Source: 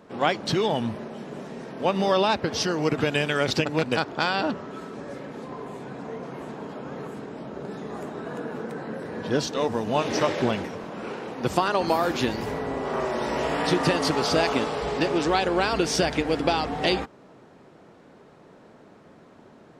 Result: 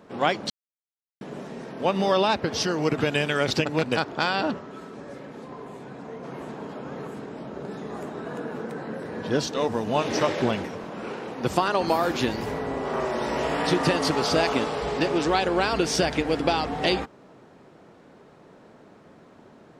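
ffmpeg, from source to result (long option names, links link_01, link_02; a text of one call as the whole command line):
ffmpeg -i in.wav -filter_complex "[0:a]asplit=5[link_01][link_02][link_03][link_04][link_05];[link_01]atrim=end=0.5,asetpts=PTS-STARTPTS,afade=type=out:start_time=0.496:duration=0.004:curve=hsin[link_06];[link_02]atrim=start=0.5:end=1.21,asetpts=PTS-STARTPTS,volume=0[link_07];[link_03]atrim=start=1.21:end=4.592,asetpts=PTS-STARTPTS,afade=type=in:duration=0.004:curve=hsin[link_08];[link_04]atrim=start=4.588:end=6.242,asetpts=PTS-STARTPTS,volume=-3dB[link_09];[link_05]atrim=start=6.238[link_10];[link_06][link_07][link_08]concat=n=3:v=0:a=1[link_11];[link_11][link_09]acrossfade=duration=0.004:curve1=hsin:curve2=hsin[link_12];[link_12][link_10]acrossfade=duration=0.004:curve1=hsin:curve2=hsin" out.wav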